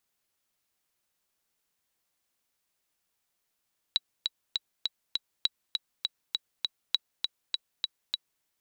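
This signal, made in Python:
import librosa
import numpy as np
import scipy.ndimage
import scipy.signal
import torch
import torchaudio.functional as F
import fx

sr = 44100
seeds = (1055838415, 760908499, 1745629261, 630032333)

y = fx.click_track(sr, bpm=201, beats=5, bars=3, hz=3910.0, accent_db=4.0, level_db=-11.0)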